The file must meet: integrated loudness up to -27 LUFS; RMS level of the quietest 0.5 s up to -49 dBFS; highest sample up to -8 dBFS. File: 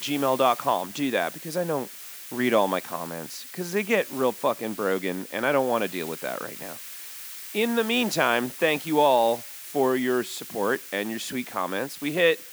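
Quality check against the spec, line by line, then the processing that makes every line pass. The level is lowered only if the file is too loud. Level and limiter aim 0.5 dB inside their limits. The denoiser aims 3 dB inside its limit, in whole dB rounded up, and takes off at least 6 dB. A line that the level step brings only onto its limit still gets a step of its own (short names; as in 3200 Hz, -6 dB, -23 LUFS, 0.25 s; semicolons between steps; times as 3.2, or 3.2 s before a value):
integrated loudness -25.5 LUFS: fail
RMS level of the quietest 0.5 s -40 dBFS: fail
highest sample -6.5 dBFS: fail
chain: denoiser 10 dB, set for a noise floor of -40 dBFS; gain -2 dB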